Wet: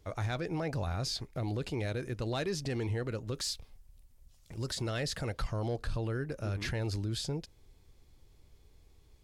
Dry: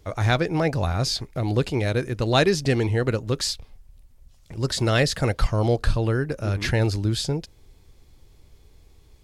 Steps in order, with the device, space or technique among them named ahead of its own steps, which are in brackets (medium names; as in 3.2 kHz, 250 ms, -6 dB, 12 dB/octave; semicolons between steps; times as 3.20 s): 3.34–4.75 s: treble shelf 4.3 kHz +6 dB; soft clipper into limiter (saturation -10 dBFS, distortion -23 dB; peak limiter -18.5 dBFS, peak gain reduction 7.5 dB); trim -8 dB